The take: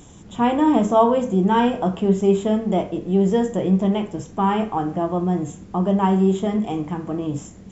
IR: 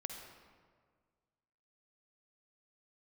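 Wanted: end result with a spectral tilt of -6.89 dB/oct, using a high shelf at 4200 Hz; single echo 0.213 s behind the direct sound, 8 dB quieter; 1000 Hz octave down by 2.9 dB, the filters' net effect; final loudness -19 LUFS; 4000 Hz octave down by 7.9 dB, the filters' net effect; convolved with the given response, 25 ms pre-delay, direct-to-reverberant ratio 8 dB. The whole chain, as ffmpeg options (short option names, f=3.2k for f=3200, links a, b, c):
-filter_complex "[0:a]equalizer=f=1k:t=o:g=-3,equalizer=f=4k:t=o:g=-8.5,highshelf=f=4.2k:g=-6,aecho=1:1:213:0.398,asplit=2[a][b];[1:a]atrim=start_sample=2205,adelay=25[c];[b][c]afir=irnorm=-1:irlink=0,volume=-6.5dB[d];[a][d]amix=inputs=2:normalize=0,volume=1dB"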